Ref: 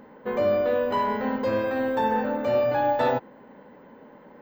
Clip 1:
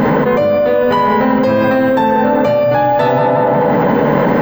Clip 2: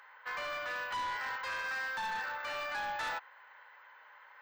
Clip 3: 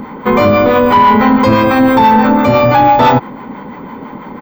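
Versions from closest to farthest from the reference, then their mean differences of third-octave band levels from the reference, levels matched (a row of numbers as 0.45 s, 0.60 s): 3, 1, 2; 3.5 dB, 7.0 dB, 11.5 dB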